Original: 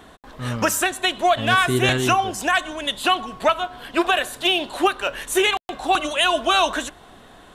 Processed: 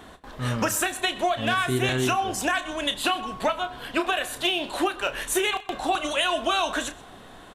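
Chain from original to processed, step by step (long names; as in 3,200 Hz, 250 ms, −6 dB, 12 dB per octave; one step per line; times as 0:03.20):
downward compressor, threshold −21 dBFS, peak gain reduction 8.5 dB
double-tracking delay 31 ms −11 dB
single-tap delay 127 ms −21.5 dB
on a send at −21 dB: convolution reverb RT60 0.30 s, pre-delay 76 ms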